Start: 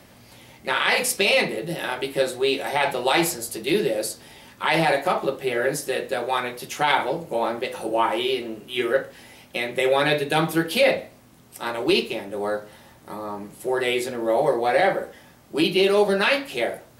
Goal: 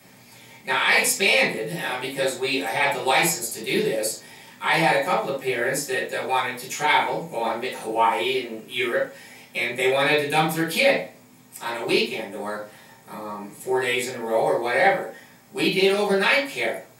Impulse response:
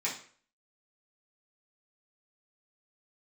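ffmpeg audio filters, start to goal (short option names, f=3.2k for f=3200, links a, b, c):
-filter_complex "[0:a]highshelf=f=7.8k:g=7.5[a];[1:a]atrim=start_sample=2205,atrim=end_sample=3528[b];[a][b]afir=irnorm=-1:irlink=0,volume=-4dB"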